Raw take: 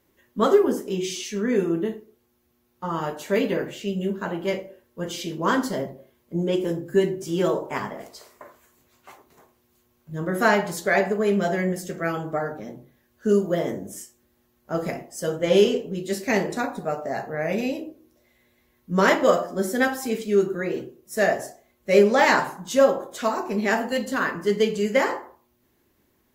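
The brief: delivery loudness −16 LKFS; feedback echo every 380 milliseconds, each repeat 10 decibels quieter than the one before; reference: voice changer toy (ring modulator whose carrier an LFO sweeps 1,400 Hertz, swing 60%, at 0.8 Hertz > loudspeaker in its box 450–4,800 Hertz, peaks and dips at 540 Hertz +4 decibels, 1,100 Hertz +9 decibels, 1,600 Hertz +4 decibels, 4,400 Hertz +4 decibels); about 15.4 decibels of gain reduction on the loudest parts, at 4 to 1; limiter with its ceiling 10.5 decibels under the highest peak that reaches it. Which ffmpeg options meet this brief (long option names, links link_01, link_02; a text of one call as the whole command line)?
ffmpeg -i in.wav -af "acompressor=threshold=-31dB:ratio=4,alimiter=level_in=5.5dB:limit=-24dB:level=0:latency=1,volume=-5.5dB,aecho=1:1:380|760|1140|1520:0.316|0.101|0.0324|0.0104,aeval=exprs='val(0)*sin(2*PI*1400*n/s+1400*0.6/0.8*sin(2*PI*0.8*n/s))':channel_layout=same,highpass=450,equalizer=frequency=540:width_type=q:width=4:gain=4,equalizer=frequency=1100:width_type=q:width=4:gain=9,equalizer=frequency=1600:width_type=q:width=4:gain=4,equalizer=frequency=4400:width_type=q:width=4:gain=4,lowpass=frequency=4800:width=0.5412,lowpass=frequency=4800:width=1.3066,volume=21dB" out.wav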